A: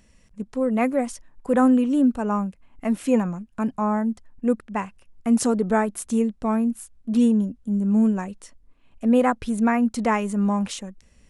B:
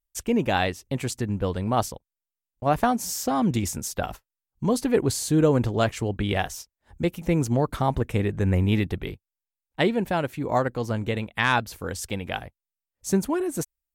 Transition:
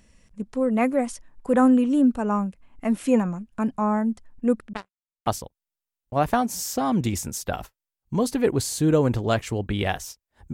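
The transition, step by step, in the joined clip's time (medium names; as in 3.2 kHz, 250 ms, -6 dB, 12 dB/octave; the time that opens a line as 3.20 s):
A
4.73–5.27 s: power-law waveshaper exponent 3
5.27 s: go over to B from 1.77 s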